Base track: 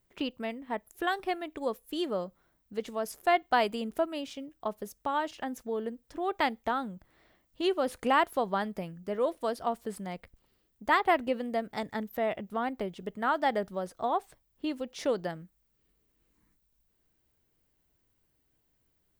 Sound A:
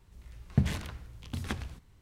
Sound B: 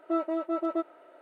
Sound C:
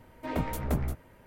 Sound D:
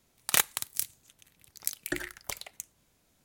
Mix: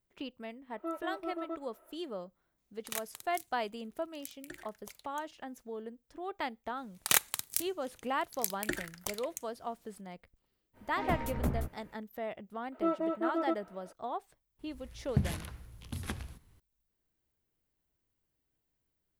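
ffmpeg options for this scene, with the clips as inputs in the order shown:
ffmpeg -i bed.wav -i cue0.wav -i cue1.wav -i cue2.wav -i cue3.wav -filter_complex "[2:a]asplit=2[link_01][link_02];[4:a]asplit=2[link_03][link_04];[0:a]volume=-8.5dB[link_05];[link_01]equalizer=frequency=1100:width=2.8:gain=5.5[link_06];[1:a]equalizer=frequency=11000:width_type=o:width=0.3:gain=13[link_07];[link_06]atrim=end=1.21,asetpts=PTS-STARTPTS,volume=-10.5dB,afade=type=in:duration=0.004:curve=hsin,afade=type=out:start_time=1.206:duration=0.004:curve=hsin,adelay=740[link_08];[link_03]atrim=end=3.24,asetpts=PTS-STARTPTS,volume=-15dB,afade=type=in:duration=0.004:curve=hsin,afade=type=out:start_time=3.236:duration=0.004:curve=hsin,adelay=2580[link_09];[link_04]atrim=end=3.24,asetpts=PTS-STARTPTS,volume=-2dB,afade=type=in:duration=0.004:curve=hsin,afade=type=out:start_time=3.236:duration=0.004:curve=hsin,adelay=6770[link_10];[3:a]atrim=end=1.26,asetpts=PTS-STARTPTS,volume=-3.5dB,afade=type=in:duration=0.05,afade=type=out:start_time=1.21:duration=0.05,adelay=10730[link_11];[link_02]atrim=end=1.21,asetpts=PTS-STARTPTS,volume=-2.5dB,afade=type=in:duration=0.004:curve=hsin,afade=type=out:start_time=1.206:duration=0.004:curve=hsin,adelay=12720[link_12];[link_07]atrim=end=2.01,asetpts=PTS-STARTPTS,volume=-3.5dB,afade=type=in:duration=0.004:curve=hsin,afade=type=out:start_time=2.006:duration=0.004:curve=hsin,adelay=14590[link_13];[link_05][link_08][link_09][link_10][link_11][link_12][link_13]amix=inputs=7:normalize=0" out.wav

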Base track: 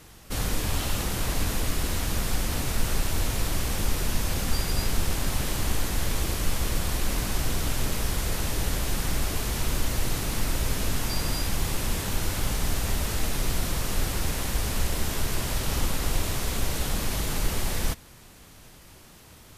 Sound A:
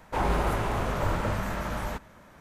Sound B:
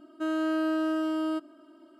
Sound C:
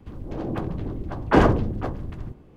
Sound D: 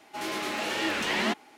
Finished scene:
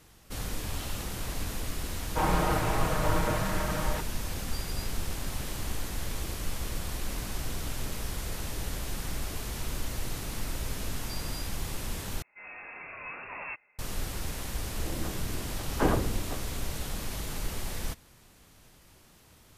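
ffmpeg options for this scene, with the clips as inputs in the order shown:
ffmpeg -i bed.wav -i cue0.wav -i cue1.wav -i cue2.wav -i cue3.wav -filter_complex "[0:a]volume=-7.5dB[link_01];[1:a]aecho=1:1:6.4:0.81[link_02];[4:a]lowpass=frequency=2500:width_type=q:width=0.5098,lowpass=frequency=2500:width_type=q:width=0.6013,lowpass=frequency=2500:width_type=q:width=0.9,lowpass=frequency=2500:width_type=q:width=2.563,afreqshift=-2900[link_03];[link_01]asplit=2[link_04][link_05];[link_04]atrim=end=12.224[link_06];[link_03]atrim=end=1.57,asetpts=PTS-STARTPTS,volume=-11.5dB[link_07];[link_05]atrim=start=13.786[link_08];[link_02]atrim=end=2.4,asetpts=PTS-STARTPTS,volume=-2dB,afade=type=in:duration=0.004:curve=hsin,afade=type=out:start_time=2.396:duration=0.004:curve=hsin,adelay=2030[link_09];[3:a]atrim=end=2.56,asetpts=PTS-STARTPTS,volume=-10dB,afade=type=in:duration=0.004:curve=hsin,afade=type=out:start_time=2.556:duration=0.004:curve=hsin,adelay=14480[link_10];[link_06][link_07]acrossfade=duration=0.004:curve1=hsin:curve2=hsin[link_11];[link_11][link_08]acrossfade=duration=0.004:curve1=hsin:curve2=hsin[link_12];[link_12][link_09][link_10]amix=inputs=3:normalize=0" out.wav

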